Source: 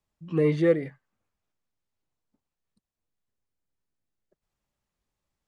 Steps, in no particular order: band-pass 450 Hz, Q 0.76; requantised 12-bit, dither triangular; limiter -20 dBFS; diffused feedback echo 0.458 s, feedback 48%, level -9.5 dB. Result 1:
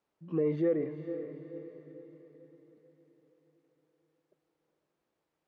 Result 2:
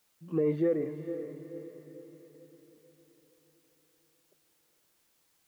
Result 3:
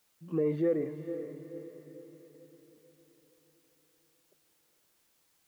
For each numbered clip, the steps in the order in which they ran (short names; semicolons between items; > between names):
limiter > diffused feedback echo > requantised > band-pass; band-pass > limiter > requantised > diffused feedback echo; limiter > band-pass > requantised > diffused feedback echo